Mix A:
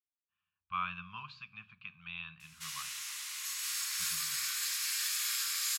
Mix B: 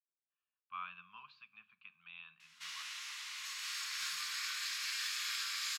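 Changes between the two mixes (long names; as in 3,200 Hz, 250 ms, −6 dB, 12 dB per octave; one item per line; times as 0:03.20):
speech −8.5 dB
master: add three-way crossover with the lows and the highs turned down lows −23 dB, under 240 Hz, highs −16 dB, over 5,500 Hz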